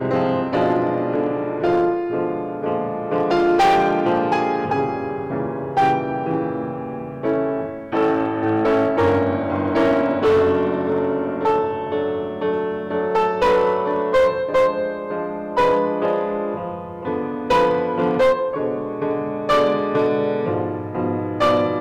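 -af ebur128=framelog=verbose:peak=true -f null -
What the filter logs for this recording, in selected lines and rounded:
Integrated loudness:
  I:         -20.2 LUFS
  Threshold: -30.2 LUFS
Loudness range:
  LRA:         2.9 LU
  Threshold: -40.2 LUFS
  LRA low:   -21.7 LUFS
  LRA high:  -18.8 LUFS
True peak:
  Peak:      -10.8 dBFS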